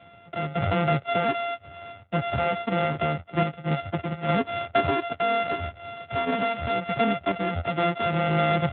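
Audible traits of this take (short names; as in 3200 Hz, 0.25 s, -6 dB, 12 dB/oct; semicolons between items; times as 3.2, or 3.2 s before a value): a buzz of ramps at a fixed pitch in blocks of 64 samples; random-step tremolo; Speex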